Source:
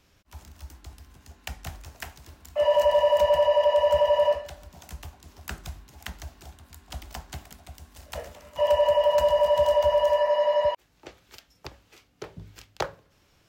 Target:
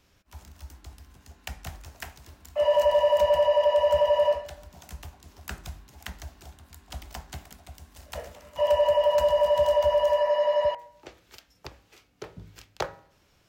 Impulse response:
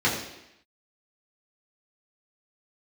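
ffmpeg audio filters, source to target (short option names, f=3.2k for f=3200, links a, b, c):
-filter_complex "[0:a]bandreject=f=160.1:t=h:w=4,bandreject=f=320.2:t=h:w=4,bandreject=f=480.3:t=h:w=4,bandreject=f=640.4:t=h:w=4,bandreject=f=800.5:t=h:w=4,bandreject=f=960.6:t=h:w=4,bandreject=f=1.1207k:t=h:w=4,bandreject=f=1.2808k:t=h:w=4,bandreject=f=1.4409k:t=h:w=4,bandreject=f=1.601k:t=h:w=4,bandreject=f=1.7611k:t=h:w=4,bandreject=f=1.9212k:t=h:w=4,bandreject=f=2.0813k:t=h:w=4,bandreject=f=2.2414k:t=h:w=4,bandreject=f=2.4015k:t=h:w=4,bandreject=f=2.5616k:t=h:w=4,asplit=2[a][b];[1:a]atrim=start_sample=2205[c];[b][c]afir=irnorm=-1:irlink=0,volume=-36.5dB[d];[a][d]amix=inputs=2:normalize=0,volume=-1dB"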